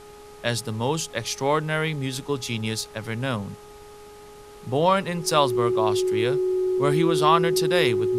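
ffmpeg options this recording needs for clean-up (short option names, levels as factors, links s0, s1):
-af "bandreject=f=416.2:t=h:w=4,bandreject=f=832.4:t=h:w=4,bandreject=f=1248.6:t=h:w=4,bandreject=f=370:w=30,afftdn=nr=24:nf=-44"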